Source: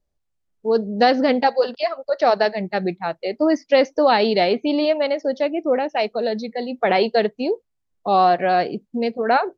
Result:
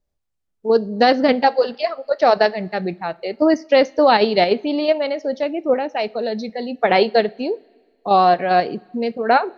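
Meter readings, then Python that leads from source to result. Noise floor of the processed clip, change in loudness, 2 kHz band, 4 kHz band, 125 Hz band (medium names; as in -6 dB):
-73 dBFS, +1.5 dB, +2.0 dB, +1.5 dB, +1.0 dB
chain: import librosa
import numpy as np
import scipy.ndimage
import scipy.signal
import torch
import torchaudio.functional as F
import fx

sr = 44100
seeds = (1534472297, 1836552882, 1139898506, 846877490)

p1 = fx.level_steps(x, sr, step_db=17)
p2 = x + F.gain(torch.from_numpy(p1), 1.5).numpy()
p3 = fx.rev_double_slope(p2, sr, seeds[0], early_s=0.28, late_s=1.7, knee_db=-18, drr_db=17.0)
y = F.gain(torch.from_numpy(p3), -3.0).numpy()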